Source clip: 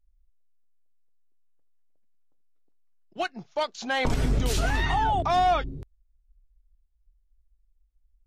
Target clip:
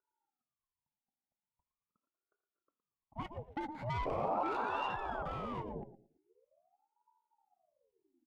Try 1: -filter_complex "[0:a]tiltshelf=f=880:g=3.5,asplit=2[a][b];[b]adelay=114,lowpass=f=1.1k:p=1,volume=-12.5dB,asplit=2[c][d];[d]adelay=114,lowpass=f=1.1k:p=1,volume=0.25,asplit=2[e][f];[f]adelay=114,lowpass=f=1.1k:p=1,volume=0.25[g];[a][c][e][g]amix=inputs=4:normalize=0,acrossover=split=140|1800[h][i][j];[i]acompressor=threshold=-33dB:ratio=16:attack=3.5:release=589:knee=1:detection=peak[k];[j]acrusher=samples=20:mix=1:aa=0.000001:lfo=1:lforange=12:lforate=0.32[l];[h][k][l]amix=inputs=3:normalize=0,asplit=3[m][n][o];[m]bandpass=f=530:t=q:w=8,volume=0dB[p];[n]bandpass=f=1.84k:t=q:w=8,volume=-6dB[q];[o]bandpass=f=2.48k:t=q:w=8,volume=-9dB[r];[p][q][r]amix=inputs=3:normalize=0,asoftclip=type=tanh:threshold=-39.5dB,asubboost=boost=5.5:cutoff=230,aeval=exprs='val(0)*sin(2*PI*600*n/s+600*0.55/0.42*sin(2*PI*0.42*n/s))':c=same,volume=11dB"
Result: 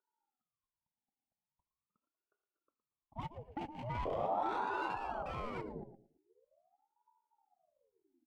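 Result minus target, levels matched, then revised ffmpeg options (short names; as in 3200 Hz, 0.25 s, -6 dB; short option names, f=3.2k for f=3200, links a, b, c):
decimation with a swept rate: distortion -15 dB; compressor: peak gain reduction +6 dB
-filter_complex "[0:a]tiltshelf=f=880:g=3.5,asplit=2[a][b];[b]adelay=114,lowpass=f=1.1k:p=1,volume=-12.5dB,asplit=2[c][d];[d]adelay=114,lowpass=f=1.1k:p=1,volume=0.25,asplit=2[e][f];[f]adelay=114,lowpass=f=1.1k:p=1,volume=0.25[g];[a][c][e][g]amix=inputs=4:normalize=0,acrossover=split=140|1800[h][i][j];[i]acompressor=threshold=-26.5dB:ratio=16:attack=3.5:release=589:knee=1:detection=peak[k];[j]acrusher=samples=20:mix=1:aa=0.000001:lfo=1:lforange=12:lforate=0.43[l];[h][k][l]amix=inputs=3:normalize=0,asplit=3[m][n][o];[m]bandpass=f=530:t=q:w=8,volume=0dB[p];[n]bandpass=f=1.84k:t=q:w=8,volume=-6dB[q];[o]bandpass=f=2.48k:t=q:w=8,volume=-9dB[r];[p][q][r]amix=inputs=3:normalize=0,asoftclip=type=tanh:threshold=-39.5dB,asubboost=boost=5.5:cutoff=230,aeval=exprs='val(0)*sin(2*PI*600*n/s+600*0.55/0.42*sin(2*PI*0.42*n/s))':c=same,volume=11dB"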